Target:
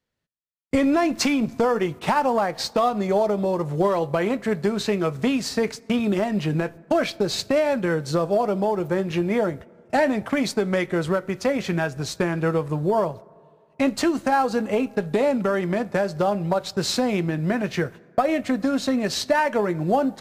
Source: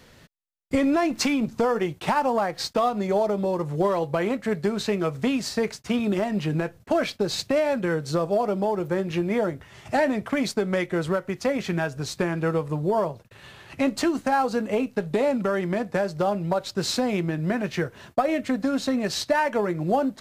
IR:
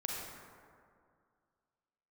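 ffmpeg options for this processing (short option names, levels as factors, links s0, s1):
-filter_complex "[0:a]agate=range=0.0251:threshold=0.0141:ratio=16:detection=peak,asplit=2[s0][s1];[1:a]atrim=start_sample=2205[s2];[s1][s2]afir=irnorm=-1:irlink=0,volume=0.0668[s3];[s0][s3]amix=inputs=2:normalize=0,volume=1.19"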